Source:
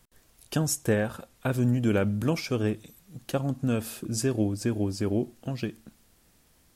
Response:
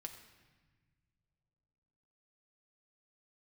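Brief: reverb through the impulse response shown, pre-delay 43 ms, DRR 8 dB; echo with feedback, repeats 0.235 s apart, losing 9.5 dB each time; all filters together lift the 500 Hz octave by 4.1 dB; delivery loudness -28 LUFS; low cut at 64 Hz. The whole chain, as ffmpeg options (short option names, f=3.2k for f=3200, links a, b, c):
-filter_complex "[0:a]highpass=64,equalizer=f=500:t=o:g=5,aecho=1:1:235|470|705|940:0.335|0.111|0.0365|0.012,asplit=2[a][b];[1:a]atrim=start_sample=2205,adelay=43[c];[b][c]afir=irnorm=-1:irlink=0,volume=-4dB[d];[a][d]amix=inputs=2:normalize=0,volume=-2dB"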